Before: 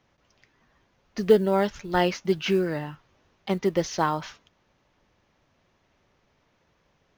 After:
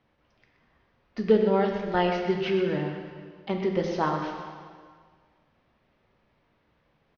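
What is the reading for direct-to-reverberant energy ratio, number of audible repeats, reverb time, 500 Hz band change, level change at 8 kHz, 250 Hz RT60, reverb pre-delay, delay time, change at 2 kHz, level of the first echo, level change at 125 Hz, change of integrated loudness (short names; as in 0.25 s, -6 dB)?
2.0 dB, 1, 1.8 s, -1.0 dB, n/a, 1.8 s, 6 ms, 0.125 s, -1.5 dB, -10.5 dB, -1.0 dB, -1.5 dB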